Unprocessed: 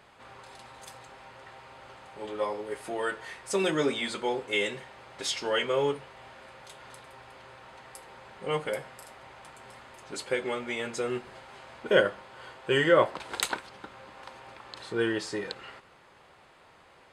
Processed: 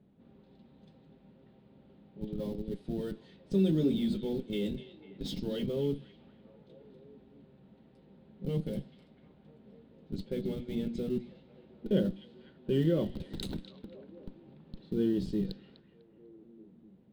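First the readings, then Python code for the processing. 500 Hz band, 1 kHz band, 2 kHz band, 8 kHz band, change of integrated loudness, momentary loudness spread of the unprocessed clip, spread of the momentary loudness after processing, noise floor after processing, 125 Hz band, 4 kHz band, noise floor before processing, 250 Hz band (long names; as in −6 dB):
−7.0 dB, −22.5 dB, −23.0 dB, below −15 dB, −4.0 dB, 23 LU, 21 LU, −61 dBFS, +6.5 dB, −12.0 dB, −57 dBFS, +4.0 dB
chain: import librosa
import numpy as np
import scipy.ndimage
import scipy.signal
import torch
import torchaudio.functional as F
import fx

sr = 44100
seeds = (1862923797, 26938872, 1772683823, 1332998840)

p1 = fx.env_lowpass(x, sr, base_hz=1700.0, full_db=-28.0)
p2 = fx.hum_notches(p1, sr, base_hz=60, count=6)
p3 = fx.schmitt(p2, sr, flips_db=-31.5)
p4 = p2 + F.gain(torch.from_numpy(p3), -4.0).numpy()
p5 = fx.curve_eq(p4, sr, hz=(110.0, 190.0, 1100.0, 2300.0, 3800.0, 6900.0, 14000.0), db=(0, 14, -25, -20, -6, -18, -8))
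p6 = fx.echo_stepped(p5, sr, ms=249, hz=3000.0, octaves=-0.7, feedback_pct=70, wet_db=-11)
y = F.gain(torch.from_numpy(p6), -3.5).numpy()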